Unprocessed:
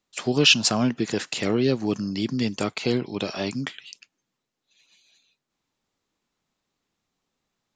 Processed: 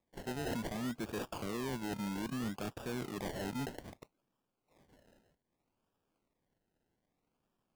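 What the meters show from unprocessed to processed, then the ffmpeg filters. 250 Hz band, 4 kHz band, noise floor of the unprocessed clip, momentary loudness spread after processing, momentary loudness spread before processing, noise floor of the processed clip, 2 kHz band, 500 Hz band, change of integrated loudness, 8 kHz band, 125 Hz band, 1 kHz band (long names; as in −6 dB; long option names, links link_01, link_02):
−14.0 dB, −24.5 dB, −82 dBFS, 5 LU, 13 LU, −85 dBFS, −17.5 dB, −15.0 dB, −16.5 dB, −19.0 dB, −13.5 dB, −9.5 dB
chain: -af "lowpass=frequency=3400:poles=1,areverse,acompressor=threshold=-29dB:ratio=6,areverse,acrusher=samples=30:mix=1:aa=0.000001:lfo=1:lforange=18:lforate=0.63,asoftclip=type=tanh:threshold=-31.5dB,volume=-1.5dB"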